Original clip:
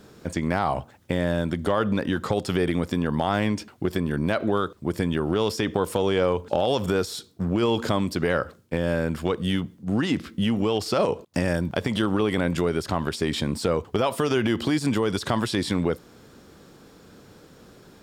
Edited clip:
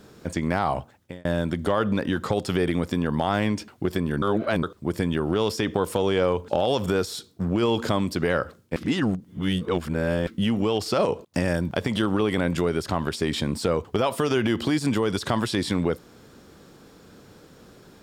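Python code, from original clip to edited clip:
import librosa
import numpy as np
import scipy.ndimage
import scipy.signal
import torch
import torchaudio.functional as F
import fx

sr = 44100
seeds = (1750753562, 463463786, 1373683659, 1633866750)

y = fx.edit(x, sr, fx.fade_out_span(start_s=0.75, length_s=0.5),
    fx.reverse_span(start_s=4.22, length_s=0.41),
    fx.reverse_span(start_s=8.76, length_s=1.51), tone=tone)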